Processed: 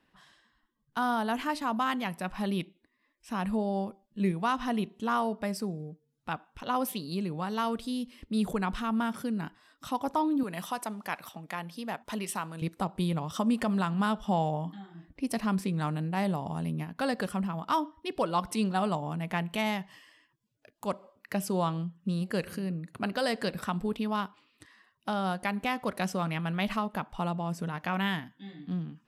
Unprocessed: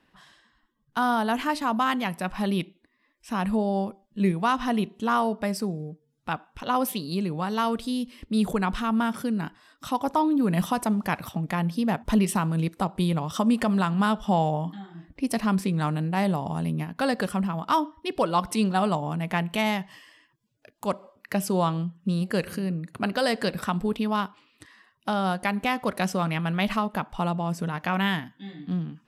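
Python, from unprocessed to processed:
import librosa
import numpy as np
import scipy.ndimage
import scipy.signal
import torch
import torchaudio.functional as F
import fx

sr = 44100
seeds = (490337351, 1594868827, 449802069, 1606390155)

y = fx.highpass(x, sr, hz=650.0, slope=6, at=(10.43, 12.62))
y = y * 10.0 ** (-5.0 / 20.0)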